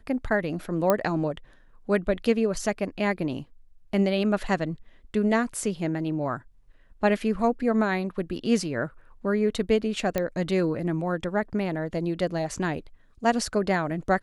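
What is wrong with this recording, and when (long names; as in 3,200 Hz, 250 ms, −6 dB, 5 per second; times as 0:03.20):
0:00.90: click −8 dBFS
0:10.18: click −12 dBFS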